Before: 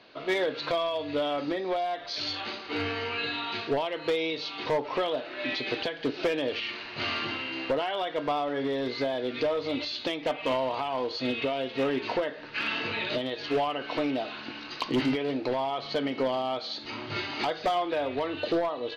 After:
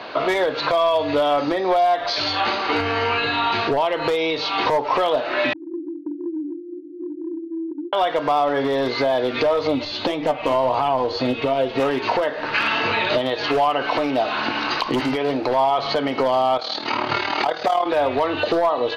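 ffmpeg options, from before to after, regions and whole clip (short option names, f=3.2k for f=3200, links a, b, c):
-filter_complex "[0:a]asettb=1/sr,asplit=3[a][b][c];[a]atrim=end=2.804[d];[b]atrim=start=2.8:end=4.08,asetpts=PTS-STARTPTS,afade=t=in:d=0.004:c=qsin,afade=t=out:st=1.276:d=0.004:c=qsin,lowshelf=f=120:g=10,acompressor=threshold=-35dB:ratio=1.5:attack=3.2:release=140:knee=1:detection=peak[e];[c]atrim=start=4.076[f];[d][e]acrossfade=d=0.004:c1=hsin:c2=qsin[g];[g][f]acrossfade=d=0.004:c1=qsin:c2=hsin,asettb=1/sr,asplit=3[h][i][j];[h]atrim=end=5.534[k];[i]atrim=start=5.53:end=7.93,asetpts=PTS-STARTPTS,afade=t=in:d=0.004:c=qsin,afade=t=out:st=2.396:d=0.004:c=qsin,asuperpass=centerf=320:order=12:qfactor=4.7,acompressor=threshold=-44dB:ratio=3:attack=3.2:release=140:knee=1:detection=peak[l];[j]atrim=start=7.926[m];[k][l]acrossfade=d=0.004:c1=hsin:c2=qsin[n];[n][m]acrossfade=d=0.004:c1=qsin:c2=hsin,asettb=1/sr,asplit=3[o][p][q];[o]atrim=end=9.674[r];[p]atrim=start=9.67:end=11.8,asetpts=PTS-STARTPTS,afade=t=in:d=0.004:c=qsin,afade=t=out:st=2.126:d=0.004:c=qsin,lowshelf=f=480:g=9,flanger=delay=6.4:depth=4.3:regen=57:speed=1.7:shape=sinusoidal[s];[q]atrim=start=11.796[t];[r][s]acrossfade=d=0.004:c1=hsin:c2=qsin[u];[u][t]acrossfade=d=0.004:c1=qsin:c2=hsin,asettb=1/sr,asplit=3[v][w][x];[v]atrim=end=16.574[y];[w]atrim=start=16.57:end=17.86,asetpts=PTS-STARTPTS,afade=t=in:d=0.004:c=qsin,afade=t=out:st=1.286:d=0.004:c=qsin,tremolo=f=38:d=0.71,highpass=f=170:p=1[z];[x]atrim=start=17.856[aa];[y][z]acrossfade=d=0.004:c1=hsin:c2=qsin[ab];[ab][aa]acrossfade=d=0.004:c1=qsin:c2=hsin,acrossover=split=100|5900[ac][ad][ae];[ac]acompressor=threshold=-56dB:ratio=4[af];[ad]acompressor=threshold=-40dB:ratio=4[ag];[ae]acompressor=threshold=-57dB:ratio=4[ah];[af][ag][ah]amix=inputs=3:normalize=0,equalizer=f=920:t=o:w=1.9:g=10.5,alimiter=level_in=23.5dB:limit=-1dB:release=50:level=0:latency=1,volume=-8.5dB"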